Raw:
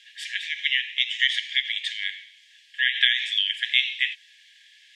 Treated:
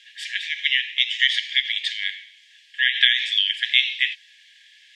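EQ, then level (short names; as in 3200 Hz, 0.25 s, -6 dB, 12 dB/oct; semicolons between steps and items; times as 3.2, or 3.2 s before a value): high shelf 8000 Hz -4.5 dB; dynamic EQ 4700 Hz, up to +6 dB, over -40 dBFS, Q 2.4; +2.5 dB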